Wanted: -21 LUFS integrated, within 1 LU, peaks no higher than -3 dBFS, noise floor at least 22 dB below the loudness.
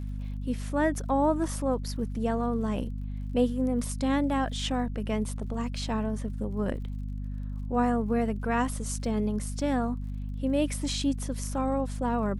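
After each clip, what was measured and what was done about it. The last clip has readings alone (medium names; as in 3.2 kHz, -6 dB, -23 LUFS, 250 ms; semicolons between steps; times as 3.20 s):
tick rate 55 per s; hum 50 Hz; highest harmonic 250 Hz; hum level -31 dBFS; loudness -30.0 LUFS; peak level -14.0 dBFS; loudness target -21.0 LUFS
-> de-click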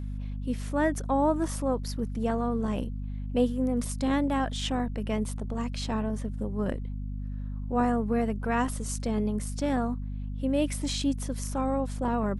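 tick rate 0.16 per s; hum 50 Hz; highest harmonic 250 Hz; hum level -31 dBFS
-> de-hum 50 Hz, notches 5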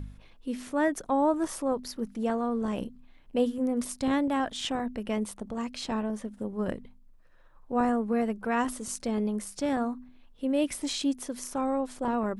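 hum not found; loudness -30.5 LUFS; peak level -15.0 dBFS; loudness target -21.0 LUFS
-> trim +9.5 dB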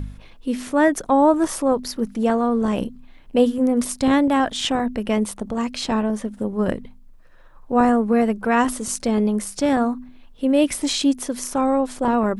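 loudness -21.0 LUFS; peak level -5.5 dBFS; noise floor -46 dBFS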